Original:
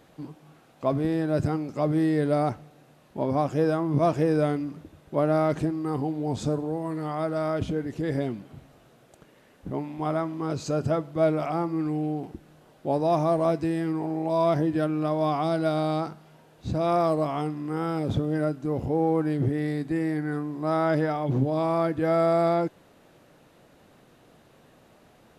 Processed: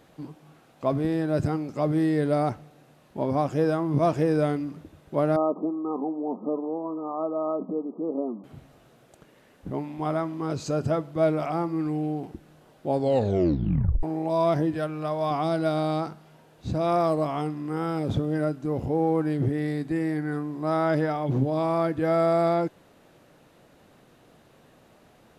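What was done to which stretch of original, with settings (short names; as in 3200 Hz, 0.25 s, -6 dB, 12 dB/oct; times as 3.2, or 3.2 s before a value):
5.36–8.44 brick-wall FIR band-pass 180–1300 Hz
12.9 tape stop 1.13 s
14.74–15.31 bell 250 Hz -13.5 dB 0.76 oct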